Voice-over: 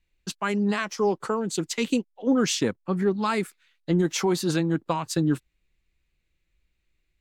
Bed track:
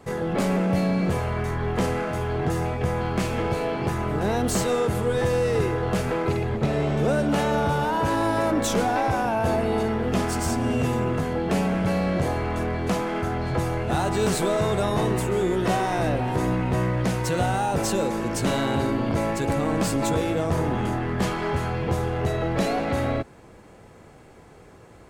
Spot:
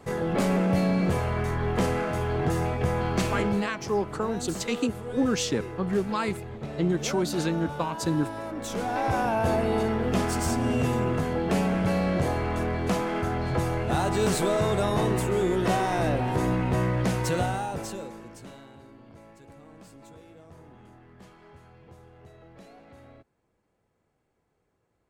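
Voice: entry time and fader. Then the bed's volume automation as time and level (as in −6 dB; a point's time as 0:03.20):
2.90 s, −3.0 dB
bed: 0:03.38 −1 dB
0:03.72 −12.5 dB
0:08.53 −12.5 dB
0:09.15 −1.5 dB
0:17.33 −1.5 dB
0:18.75 −26 dB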